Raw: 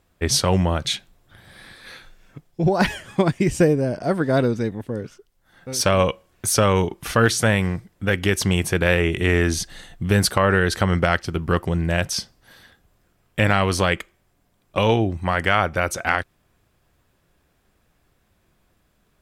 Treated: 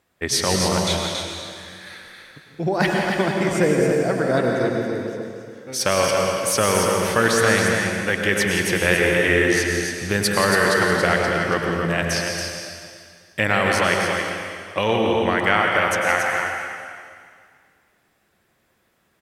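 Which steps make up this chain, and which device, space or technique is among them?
stadium PA (high-pass filter 230 Hz 6 dB per octave; parametric band 1,900 Hz +4.5 dB 0.38 octaves; loudspeakers that aren't time-aligned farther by 59 metres −10 dB, 96 metres −6 dB; convolution reverb RT60 2.1 s, pre-delay 93 ms, DRR 1.5 dB)
level −1.5 dB

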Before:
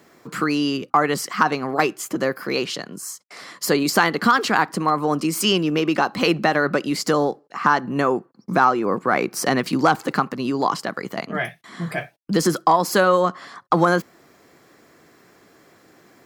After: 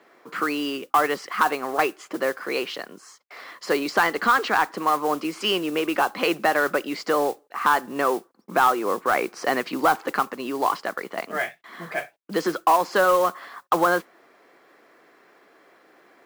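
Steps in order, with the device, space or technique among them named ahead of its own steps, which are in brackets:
carbon microphone (band-pass filter 400–3,100 Hz; soft clipping −8 dBFS, distortion −18 dB; noise that follows the level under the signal 19 dB)
0:04.07–0:04.72: parametric band 12,000 Hz −5.5 dB 0.41 octaves

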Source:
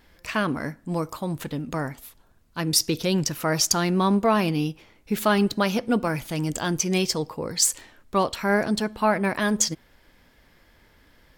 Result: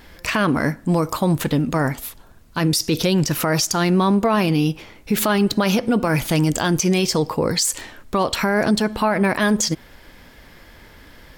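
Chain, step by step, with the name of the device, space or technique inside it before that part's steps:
loud club master (downward compressor 2.5 to 1, threshold −24 dBFS, peak gain reduction 6.5 dB; hard clipping −11.5 dBFS, distortion −44 dB; boost into a limiter +21 dB)
level −9 dB

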